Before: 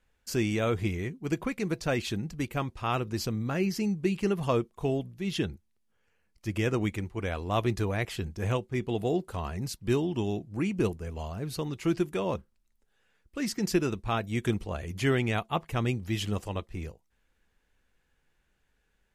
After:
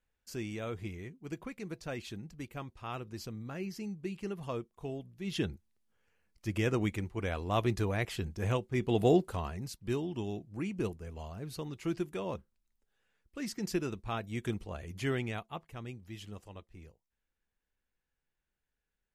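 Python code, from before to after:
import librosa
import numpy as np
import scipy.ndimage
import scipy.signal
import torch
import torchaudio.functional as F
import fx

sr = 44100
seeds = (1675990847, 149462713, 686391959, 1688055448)

y = fx.gain(x, sr, db=fx.line((5.01, -11.0), (5.44, -2.5), (8.68, -2.5), (9.11, 4.0), (9.64, -7.0), (15.19, -7.0), (15.73, -15.0)))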